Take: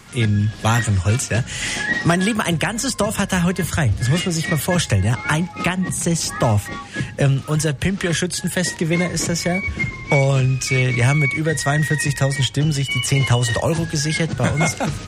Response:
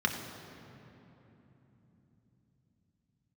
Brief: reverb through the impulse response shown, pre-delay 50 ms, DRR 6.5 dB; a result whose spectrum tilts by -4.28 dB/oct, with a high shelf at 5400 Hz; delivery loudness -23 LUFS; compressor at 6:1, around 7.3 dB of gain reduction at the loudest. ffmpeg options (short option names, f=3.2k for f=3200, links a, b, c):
-filter_complex "[0:a]highshelf=f=5.4k:g=3.5,acompressor=threshold=-20dB:ratio=6,asplit=2[a][b];[1:a]atrim=start_sample=2205,adelay=50[c];[b][c]afir=irnorm=-1:irlink=0,volume=-15.5dB[d];[a][d]amix=inputs=2:normalize=0,volume=-0.5dB"